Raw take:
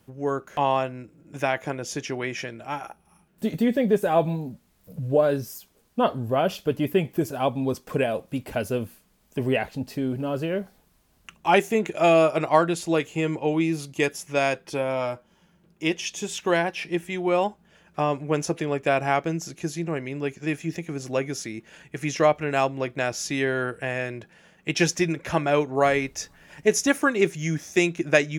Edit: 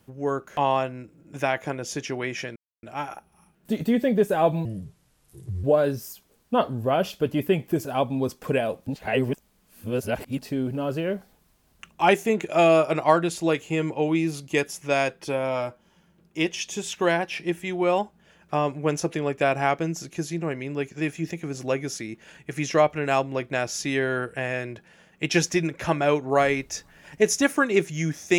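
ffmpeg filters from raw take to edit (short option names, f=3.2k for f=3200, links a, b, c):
-filter_complex "[0:a]asplit=6[a][b][c][d][e][f];[a]atrim=end=2.56,asetpts=PTS-STARTPTS,afade=t=out:st=2.556:d=0.004:c=hsin,apad=pad_dur=0.27[g];[b]atrim=start=2.56:end=4.384,asetpts=PTS-STARTPTS,afade=t=in:d=0.004:c=hsin[h];[c]atrim=start=4.38:end=5.09,asetpts=PTS-STARTPTS,asetrate=31752,aresample=44100[i];[d]atrim=start=5.086:end=8.322[j];[e]atrim=start=8.318:end=9.842,asetpts=PTS-STARTPTS,areverse[k];[f]atrim=start=9.838[l];[g][h]concat=n=2:v=0:a=1[m];[m][i]acrossfade=d=0.004:c1=hsin:c2=hsin[n];[n][j]acrossfade=d=0.004:c1=hsin:c2=hsin[o];[o][k]acrossfade=d=0.004:c1=hsin:c2=hsin[p];[p][l]acrossfade=d=0.004:c1=hsin:c2=hsin"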